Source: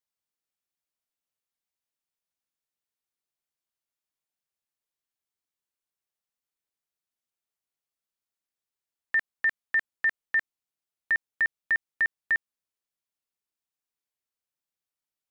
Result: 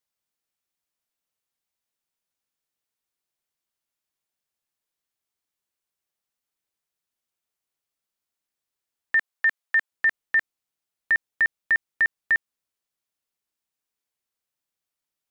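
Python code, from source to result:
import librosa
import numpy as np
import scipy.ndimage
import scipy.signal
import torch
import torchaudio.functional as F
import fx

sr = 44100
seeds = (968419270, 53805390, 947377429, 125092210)

y = fx.highpass(x, sr, hz=450.0, slope=12, at=(9.16, 9.9), fade=0.02)
y = F.gain(torch.from_numpy(y), 4.0).numpy()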